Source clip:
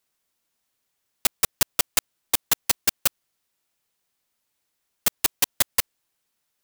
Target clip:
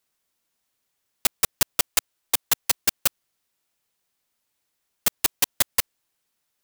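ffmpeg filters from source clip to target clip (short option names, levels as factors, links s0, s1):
-filter_complex "[0:a]asettb=1/sr,asplit=3[s0][s1][s2];[s0]atrim=end=1.874[s3];[s1]atrim=start=1.87:end=2.78,asetpts=PTS-STARTPTS,afade=t=in:d=0.004:c=qsin,afade=t=out:st=0.906:d=0.004:c=qsin,equalizer=f=180:t=o:w=1.2:g=-7[s4];[s2]atrim=start=2.776[s5];[s3][s4]acrossfade=d=0.004:c1=hsin:c2=qsin[s6];[s6][s5]acrossfade=d=0.004:c1=qsin:c2=hsin"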